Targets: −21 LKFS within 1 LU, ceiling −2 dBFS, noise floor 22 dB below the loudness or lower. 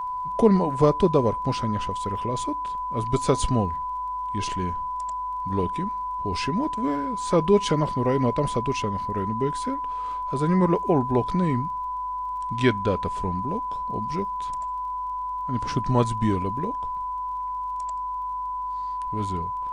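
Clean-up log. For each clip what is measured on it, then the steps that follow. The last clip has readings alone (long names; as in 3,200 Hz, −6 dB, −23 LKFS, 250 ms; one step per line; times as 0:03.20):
crackle rate 22 per second; interfering tone 1,000 Hz; level of the tone −27 dBFS; integrated loudness −25.5 LKFS; sample peak −6.0 dBFS; target loudness −21.0 LKFS
→ click removal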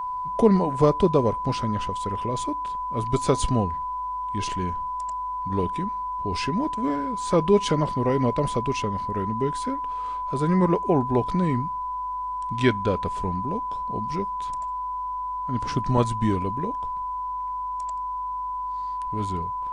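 crackle rate 0.051 per second; interfering tone 1,000 Hz; level of the tone −27 dBFS
→ notch filter 1,000 Hz, Q 30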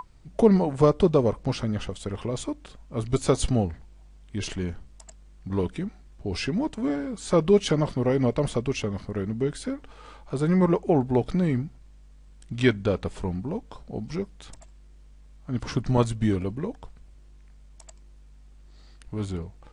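interfering tone none found; integrated loudness −26.0 LKFS; sample peak −6.0 dBFS; target loudness −21.0 LKFS
→ level +5 dB
brickwall limiter −2 dBFS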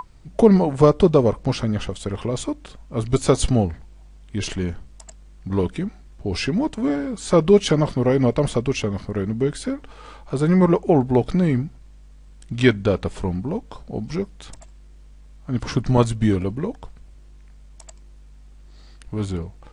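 integrated loudness −21.0 LKFS; sample peak −2.0 dBFS; background noise floor −46 dBFS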